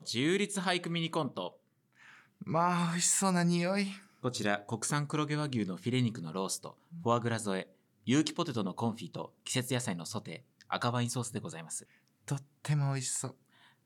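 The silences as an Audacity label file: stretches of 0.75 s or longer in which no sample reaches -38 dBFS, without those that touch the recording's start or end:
1.480000	2.420000	silence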